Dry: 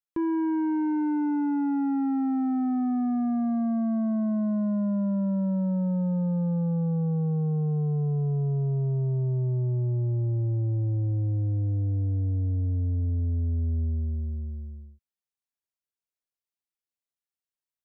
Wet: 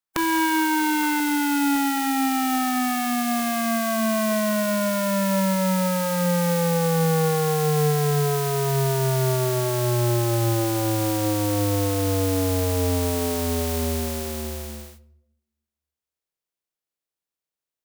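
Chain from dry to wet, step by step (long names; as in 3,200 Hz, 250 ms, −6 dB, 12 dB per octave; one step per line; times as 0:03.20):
compressing power law on the bin magnitudes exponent 0.33
parametric band 1,200 Hz +5 dB 1.2 octaves, from 0:01.20 460 Hz
rectangular room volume 2,300 cubic metres, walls furnished, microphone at 0.6 metres
level +2.5 dB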